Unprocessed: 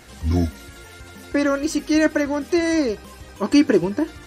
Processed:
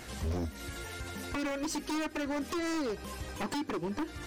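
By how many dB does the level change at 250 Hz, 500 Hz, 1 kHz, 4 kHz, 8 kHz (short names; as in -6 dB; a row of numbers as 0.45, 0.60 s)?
-15.5, -15.5, -7.0, -9.0, -8.5 dB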